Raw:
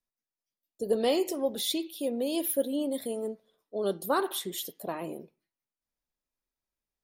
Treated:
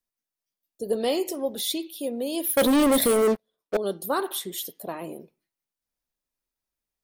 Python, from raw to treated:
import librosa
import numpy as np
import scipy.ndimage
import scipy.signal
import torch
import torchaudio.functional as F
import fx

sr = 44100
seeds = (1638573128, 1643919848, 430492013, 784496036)

y = fx.leveller(x, sr, passes=5, at=(2.57, 3.77))
y = fx.high_shelf(y, sr, hz=6100.0, db=4.0)
y = fx.notch(y, sr, hz=7200.0, q=30.0)
y = F.gain(torch.from_numpy(y), 1.0).numpy()